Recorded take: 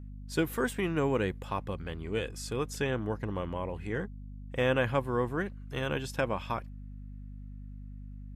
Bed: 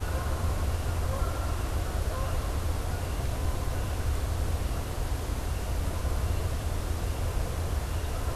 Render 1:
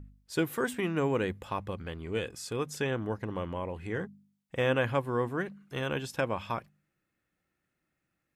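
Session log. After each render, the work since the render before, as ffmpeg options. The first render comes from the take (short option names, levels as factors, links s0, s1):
-af "bandreject=f=50:t=h:w=4,bandreject=f=100:t=h:w=4,bandreject=f=150:t=h:w=4,bandreject=f=200:t=h:w=4,bandreject=f=250:t=h:w=4"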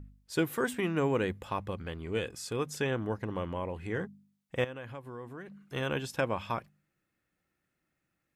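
-filter_complex "[0:a]asettb=1/sr,asplit=3[s0][s1][s2];[s0]atrim=end=4.644[s3];[s1]atrim=start=4.64:end=5.6,asetpts=PTS-STARTPTS,afade=t=in:d=0.004:c=qsin,afade=t=out:st=0.956:d=0.004:c=qsin,acompressor=threshold=0.00631:ratio=3:attack=3.2:release=140:knee=1:detection=peak[s4];[s2]atrim=start=5.596[s5];[s3][s4]acrossfade=d=0.004:c1=hsin:c2=qsin[s6];[s6][s5]acrossfade=d=0.004:c1=qsin:c2=hsin"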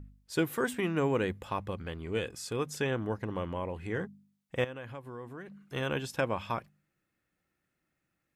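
-af anull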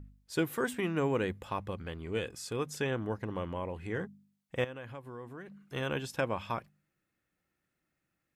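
-af "volume=0.841"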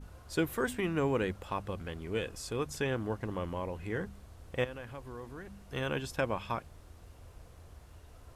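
-filter_complex "[1:a]volume=0.075[s0];[0:a][s0]amix=inputs=2:normalize=0"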